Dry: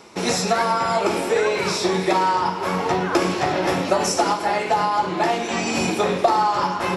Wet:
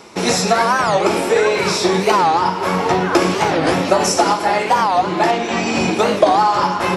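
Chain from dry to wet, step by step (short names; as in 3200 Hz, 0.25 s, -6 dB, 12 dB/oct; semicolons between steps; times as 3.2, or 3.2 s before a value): 5.31–5.99 air absorption 68 m; record warp 45 rpm, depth 250 cents; gain +5 dB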